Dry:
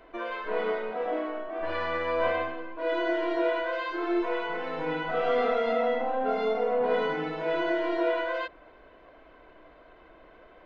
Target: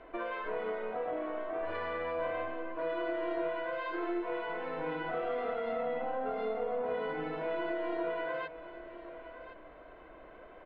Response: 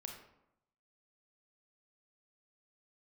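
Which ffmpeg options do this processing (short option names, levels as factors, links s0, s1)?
-filter_complex "[0:a]lowpass=3000,equalizer=f=590:t=o:w=0.77:g=2,acompressor=threshold=0.0178:ratio=3,aeval=exprs='0.0631*(cos(1*acos(clip(val(0)/0.0631,-1,1)))-cos(1*PI/2))+0.00708*(cos(2*acos(clip(val(0)/0.0631,-1,1)))-cos(2*PI/2))':c=same,asplit=2[s0][s1];[s1]aecho=0:1:1064:0.211[s2];[s0][s2]amix=inputs=2:normalize=0"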